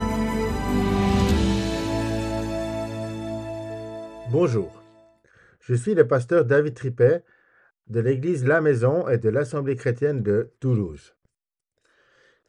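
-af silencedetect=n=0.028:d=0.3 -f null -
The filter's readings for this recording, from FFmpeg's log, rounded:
silence_start: 4.67
silence_end: 5.69 | silence_duration: 1.02
silence_start: 7.18
silence_end: 7.90 | silence_duration: 0.73
silence_start: 10.96
silence_end: 12.48 | silence_duration: 1.53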